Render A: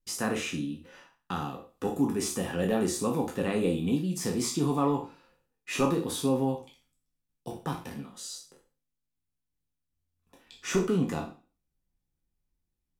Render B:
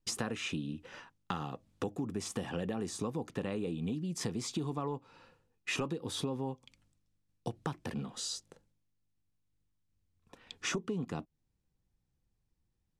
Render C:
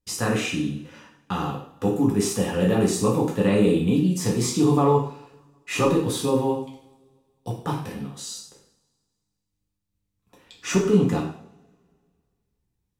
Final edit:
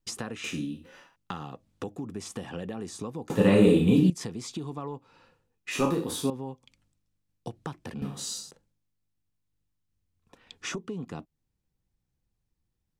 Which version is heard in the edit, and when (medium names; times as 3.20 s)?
B
0.44–1.16 s: from A
3.30–4.10 s: from C
5.71–6.30 s: from A
8.02–8.51 s: from C